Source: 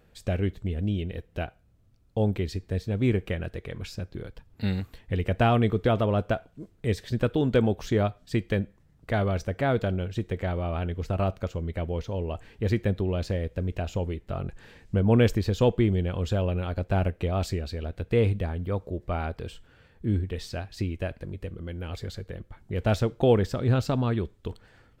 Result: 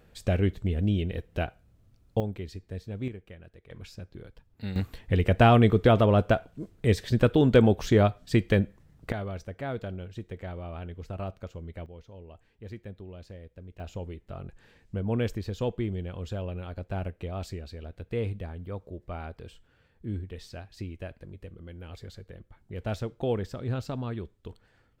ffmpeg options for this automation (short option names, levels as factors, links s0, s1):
-af "asetnsamples=n=441:p=0,asendcmd='2.2 volume volume -8.5dB;3.08 volume volume -17dB;3.7 volume volume -7.5dB;4.76 volume volume 3.5dB;9.12 volume volume -9dB;11.86 volume volume -16.5dB;13.8 volume volume -8dB',volume=1.26"